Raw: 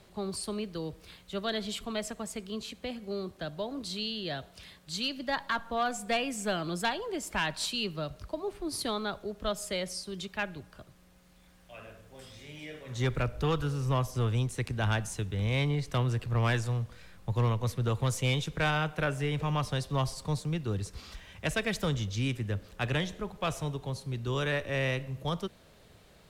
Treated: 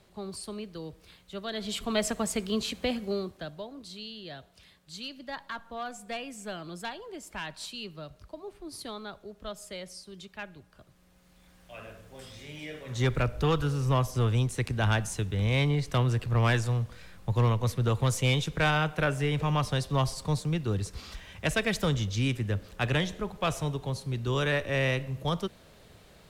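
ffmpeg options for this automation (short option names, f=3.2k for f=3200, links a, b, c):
-af "volume=18dB,afade=t=in:st=1.52:d=0.57:silence=0.266073,afade=t=out:st=2.94:d=0.35:silence=0.421697,afade=t=out:st=3.29:d=0.43:silence=0.421697,afade=t=in:st=10.69:d=1.1:silence=0.316228"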